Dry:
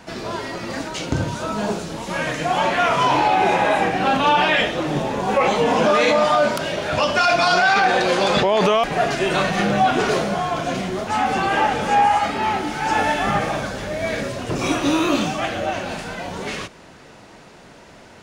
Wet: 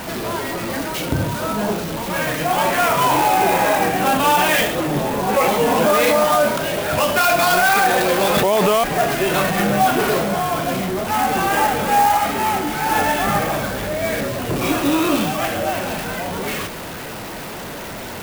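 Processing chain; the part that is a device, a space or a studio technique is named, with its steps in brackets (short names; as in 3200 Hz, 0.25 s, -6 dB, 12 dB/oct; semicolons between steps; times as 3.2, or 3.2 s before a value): early CD player with a faulty converter (zero-crossing step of -26 dBFS; clock jitter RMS 0.036 ms)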